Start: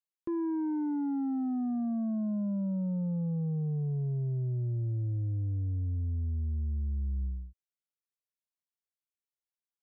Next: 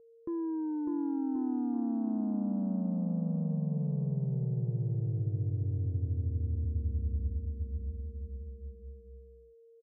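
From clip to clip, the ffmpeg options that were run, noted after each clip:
ffmpeg -i in.wav -filter_complex "[0:a]asplit=2[link_01][link_02];[link_02]aecho=0:1:600|1080|1464|1771|2017:0.631|0.398|0.251|0.158|0.1[link_03];[link_01][link_03]amix=inputs=2:normalize=0,aeval=exprs='val(0)+0.00224*sin(2*PI*460*n/s)':channel_layout=same,lowpass=1200,volume=-2.5dB" out.wav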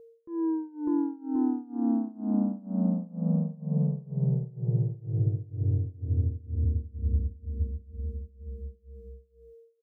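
ffmpeg -i in.wav -af "tremolo=f=2.1:d=0.94,volume=7.5dB" out.wav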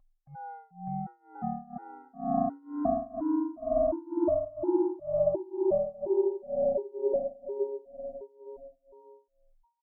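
ffmpeg -i in.wav -af "aeval=exprs='val(0)*sin(2*PI*480*n/s)':channel_layout=same,dynaudnorm=framelen=520:gausssize=9:maxgain=11dB,afftfilt=real='re*gt(sin(2*PI*1.4*pts/sr)*(1-2*mod(floor(b*sr/1024/260),2)),0)':imag='im*gt(sin(2*PI*1.4*pts/sr)*(1-2*mod(floor(b*sr/1024/260),2)),0)':win_size=1024:overlap=0.75,volume=-5dB" out.wav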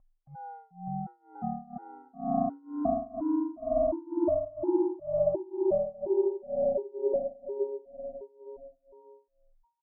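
ffmpeg -i in.wav -af "lowpass=1200" out.wav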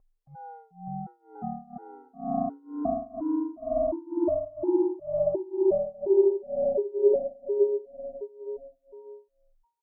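ffmpeg -i in.wav -af "equalizer=frequency=430:width=4.4:gain=12.5,volume=-1dB" out.wav

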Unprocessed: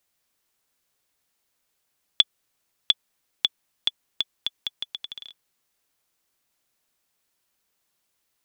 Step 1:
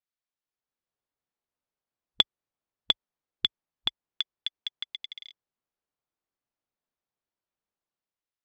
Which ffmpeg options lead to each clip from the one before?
ffmpeg -i in.wav -filter_complex "[0:a]afwtdn=0.00708,lowpass=4900,acrossover=split=1300[link_01][link_02];[link_01]dynaudnorm=framelen=200:gausssize=7:maxgain=9dB[link_03];[link_03][link_02]amix=inputs=2:normalize=0,volume=-2.5dB" out.wav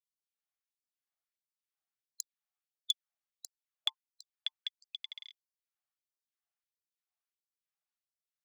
ffmpeg -i in.wav -af "asuperstop=centerf=970:order=20:qfactor=6.7,aeval=exprs='clip(val(0),-1,0.211)':channel_layout=same,afftfilt=real='re*gte(b*sr/1024,570*pow(4400/570,0.5+0.5*sin(2*PI*1.5*pts/sr)))':imag='im*gte(b*sr/1024,570*pow(4400/570,0.5+0.5*sin(2*PI*1.5*pts/sr)))':win_size=1024:overlap=0.75,volume=-4dB" out.wav

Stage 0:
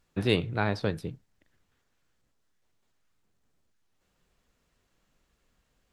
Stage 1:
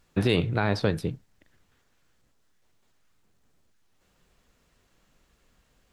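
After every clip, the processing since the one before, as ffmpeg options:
ffmpeg -i in.wav -af "alimiter=limit=-18dB:level=0:latency=1,volume=6.5dB" out.wav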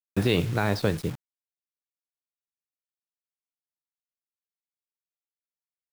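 ffmpeg -i in.wav -af "acrusher=bits=6:mix=0:aa=0.000001" out.wav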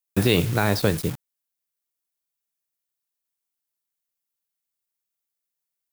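ffmpeg -i in.wav -af "highshelf=frequency=7500:gain=11.5,volume=3.5dB" out.wav

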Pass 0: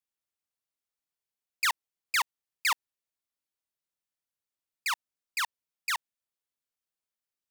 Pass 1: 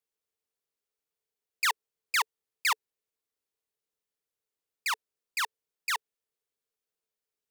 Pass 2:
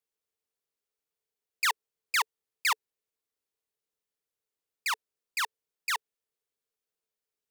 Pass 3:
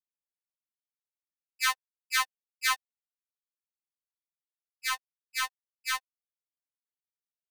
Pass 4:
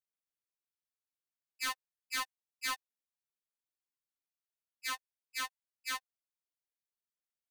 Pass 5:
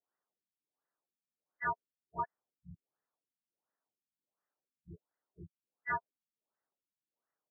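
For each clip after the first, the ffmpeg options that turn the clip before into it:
ffmpeg -i in.wav -af "equalizer=frequency=440:width=4.3:gain=14.5" out.wav
ffmpeg -i in.wav -af anull out.wav
ffmpeg -i in.wav -af "aeval=exprs='sgn(val(0))*max(abs(val(0))-0.00596,0)':channel_layout=same,afftfilt=real='re*3.46*eq(mod(b,12),0)':imag='im*3.46*eq(mod(b,12),0)':win_size=2048:overlap=0.75,volume=3.5dB" out.wav
ffmpeg -i in.wav -af "volume=26.5dB,asoftclip=hard,volume=-26.5dB,volume=-5dB" out.wav
ffmpeg -i in.wav -filter_complex "[0:a]highpass=frequency=200:width_type=q:width=0.5412,highpass=frequency=200:width_type=q:width=1.307,lowpass=frequency=3000:width_type=q:width=0.5176,lowpass=frequency=3000:width_type=q:width=0.7071,lowpass=frequency=3000:width_type=q:width=1.932,afreqshift=-91,asplit=2[link_01][link_02];[link_02]highpass=frequency=720:poles=1,volume=17dB,asoftclip=type=tanh:threshold=-27dB[link_03];[link_01][link_03]amix=inputs=2:normalize=0,lowpass=frequency=1300:poles=1,volume=-6dB,afftfilt=real='re*lt(b*sr/1024,250*pow(2100/250,0.5+0.5*sin(2*PI*1.4*pts/sr)))':imag='im*lt(b*sr/1024,250*pow(2100/250,0.5+0.5*sin(2*PI*1.4*pts/sr)))':win_size=1024:overlap=0.75,volume=4dB" out.wav

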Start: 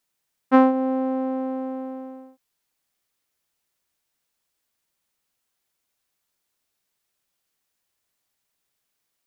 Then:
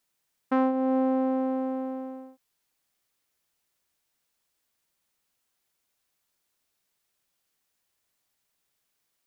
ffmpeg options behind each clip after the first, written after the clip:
ffmpeg -i in.wav -af "alimiter=limit=-15dB:level=0:latency=1:release=392" out.wav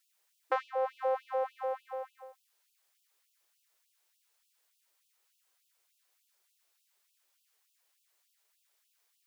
ffmpeg -i in.wav -filter_complex "[0:a]acrossover=split=400|3000[link_01][link_02][link_03];[link_02]acompressor=threshold=-28dB:ratio=6[link_04];[link_01][link_04][link_03]amix=inputs=3:normalize=0,afftfilt=real='re*gte(b*sr/1024,310*pow(2600/310,0.5+0.5*sin(2*PI*3.4*pts/sr)))':imag='im*gte(b*sr/1024,310*pow(2600/310,0.5+0.5*sin(2*PI*3.4*pts/sr)))':win_size=1024:overlap=0.75,volume=2.5dB" out.wav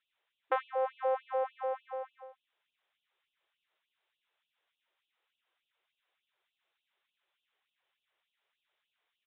ffmpeg -i in.wav -af "aresample=8000,aresample=44100" out.wav

